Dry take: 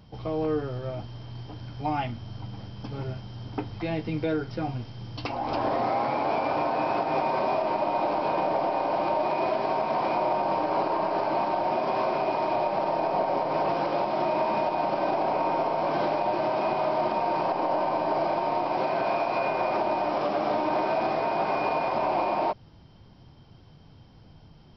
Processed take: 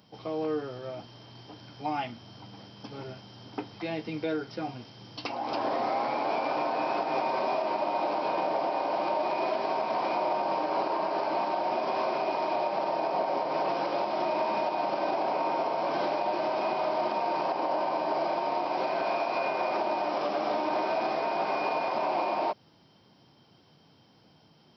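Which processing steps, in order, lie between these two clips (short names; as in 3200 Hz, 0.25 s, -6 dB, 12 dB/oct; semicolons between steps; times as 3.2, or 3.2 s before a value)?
HPF 210 Hz 12 dB/oct; high shelf 4400 Hz +8 dB; gain -3 dB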